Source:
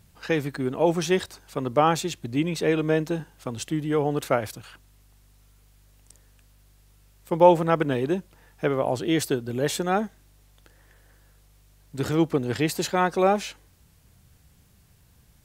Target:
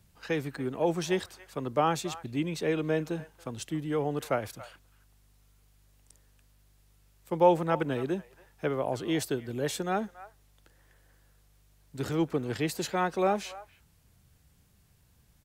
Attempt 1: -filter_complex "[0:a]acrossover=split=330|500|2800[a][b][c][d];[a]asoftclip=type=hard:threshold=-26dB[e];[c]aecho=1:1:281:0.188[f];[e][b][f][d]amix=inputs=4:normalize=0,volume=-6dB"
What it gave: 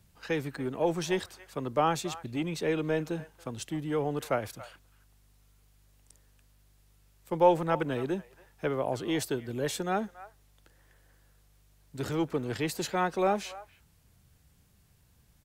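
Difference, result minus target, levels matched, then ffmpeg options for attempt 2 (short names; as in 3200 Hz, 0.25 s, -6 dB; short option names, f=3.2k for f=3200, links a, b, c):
hard clip: distortion +20 dB
-filter_complex "[0:a]acrossover=split=330|500|2800[a][b][c][d];[a]asoftclip=type=hard:threshold=-19dB[e];[c]aecho=1:1:281:0.188[f];[e][b][f][d]amix=inputs=4:normalize=0,volume=-6dB"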